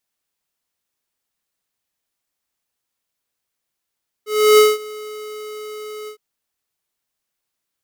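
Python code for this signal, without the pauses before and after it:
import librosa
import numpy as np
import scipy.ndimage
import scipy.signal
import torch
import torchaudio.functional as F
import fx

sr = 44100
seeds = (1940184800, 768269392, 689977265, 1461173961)

y = fx.adsr_tone(sr, wave='square', hz=426.0, attack_ms=322.0, decay_ms=195.0, sustain_db=-23.0, held_s=1.82, release_ms=91.0, level_db=-8.5)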